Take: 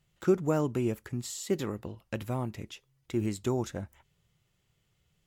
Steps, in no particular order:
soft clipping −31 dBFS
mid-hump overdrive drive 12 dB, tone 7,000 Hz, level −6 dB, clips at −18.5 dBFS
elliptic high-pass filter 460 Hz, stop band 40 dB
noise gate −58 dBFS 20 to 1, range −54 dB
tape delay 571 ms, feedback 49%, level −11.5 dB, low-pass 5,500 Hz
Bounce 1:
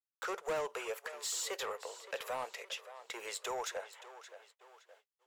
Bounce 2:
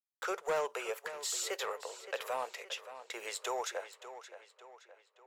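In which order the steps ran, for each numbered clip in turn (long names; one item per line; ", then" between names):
mid-hump overdrive, then tape delay, then noise gate, then elliptic high-pass filter, then soft clipping
elliptic high-pass filter, then soft clipping, then noise gate, then tape delay, then mid-hump overdrive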